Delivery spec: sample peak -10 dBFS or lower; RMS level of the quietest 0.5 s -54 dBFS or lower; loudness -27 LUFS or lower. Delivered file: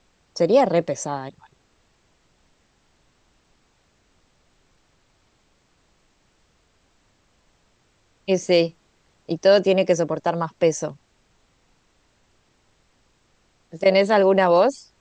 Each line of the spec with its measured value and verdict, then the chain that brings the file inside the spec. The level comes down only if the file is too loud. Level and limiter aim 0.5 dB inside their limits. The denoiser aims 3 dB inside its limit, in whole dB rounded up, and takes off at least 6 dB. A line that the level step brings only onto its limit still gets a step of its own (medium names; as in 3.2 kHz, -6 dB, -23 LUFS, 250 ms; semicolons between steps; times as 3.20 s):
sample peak -4.5 dBFS: fail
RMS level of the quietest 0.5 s -63 dBFS: pass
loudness -20.0 LUFS: fail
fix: trim -7.5 dB